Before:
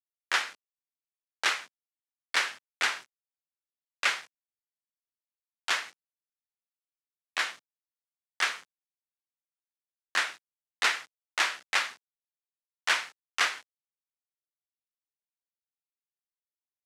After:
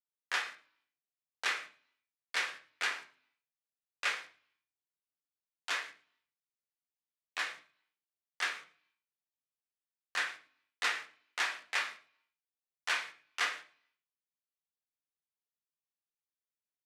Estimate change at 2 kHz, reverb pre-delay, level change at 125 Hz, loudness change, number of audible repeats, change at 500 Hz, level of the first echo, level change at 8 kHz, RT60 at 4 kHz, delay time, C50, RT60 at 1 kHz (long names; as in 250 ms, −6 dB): −5.5 dB, 3 ms, can't be measured, −6.0 dB, 1, −6.0 dB, −20.0 dB, −8.0 dB, 0.50 s, 112 ms, 12.0 dB, 0.40 s